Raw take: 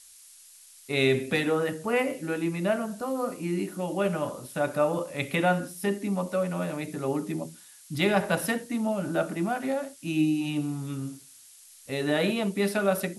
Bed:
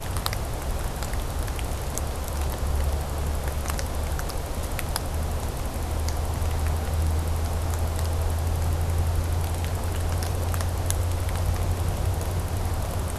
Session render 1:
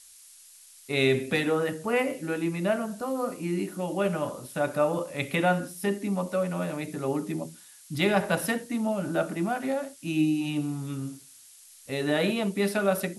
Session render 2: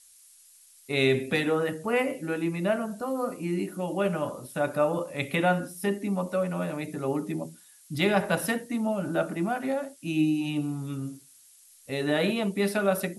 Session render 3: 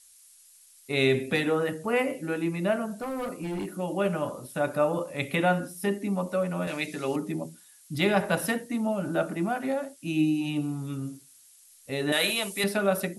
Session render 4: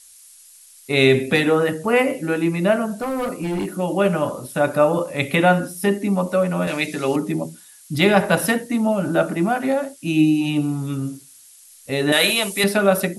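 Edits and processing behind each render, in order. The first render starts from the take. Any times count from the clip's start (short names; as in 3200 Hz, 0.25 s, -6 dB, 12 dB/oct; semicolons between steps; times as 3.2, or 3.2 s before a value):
nothing audible
denoiser 6 dB, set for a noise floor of -52 dBFS
3–3.73 hard clip -29 dBFS; 6.67–7.16 weighting filter D; 12.12–12.64 tilt +4.5 dB/oct
gain +8.5 dB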